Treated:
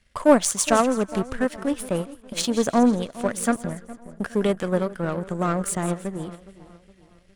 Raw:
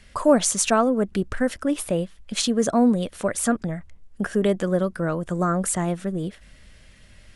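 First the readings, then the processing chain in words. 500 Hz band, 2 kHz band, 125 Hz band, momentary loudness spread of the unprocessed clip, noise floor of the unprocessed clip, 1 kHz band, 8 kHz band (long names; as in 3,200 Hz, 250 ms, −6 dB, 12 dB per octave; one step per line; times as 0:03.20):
0.0 dB, 0.0 dB, −2.0 dB, 10 LU, −51 dBFS, +1.0 dB, −1.5 dB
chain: echo with a time of its own for lows and highs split 1,300 Hz, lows 414 ms, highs 165 ms, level −12.5 dB
power curve on the samples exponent 1.4
level +3.5 dB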